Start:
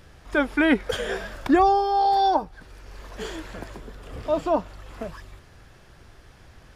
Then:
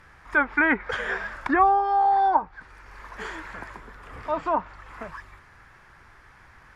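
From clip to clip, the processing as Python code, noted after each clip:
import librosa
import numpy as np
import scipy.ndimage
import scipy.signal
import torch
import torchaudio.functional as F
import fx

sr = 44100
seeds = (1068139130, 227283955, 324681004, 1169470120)

y = fx.band_shelf(x, sr, hz=1400.0, db=12.0, octaves=1.7)
y = fx.env_lowpass_down(y, sr, base_hz=2200.0, full_db=-11.0)
y = y * 10.0 ** (-6.5 / 20.0)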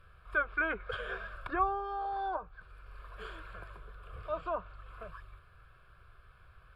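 y = fx.low_shelf(x, sr, hz=170.0, db=7.5)
y = fx.fixed_phaser(y, sr, hz=1300.0, stages=8)
y = y * 10.0 ** (-7.5 / 20.0)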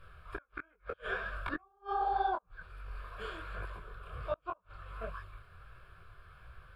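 y = fx.gate_flip(x, sr, shuts_db=-27.0, range_db=-39)
y = fx.detune_double(y, sr, cents=48)
y = y * 10.0 ** (7.5 / 20.0)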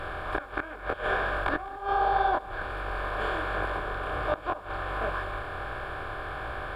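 y = fx.bin_compress(x, sr, power=0.4)
y = y + 10.0 ** (-20.0 / 20.0) * np.pad(y, (int(196 * sr / 1000.0), 0))[:len(y)]
y = y * 10.0 ** (4.0 / 20.0)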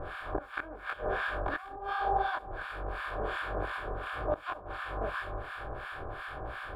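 y = fx.harmonic_tremolo(x, sr, hz=2.8, depth_pct=100, crossover_hz=1000.0)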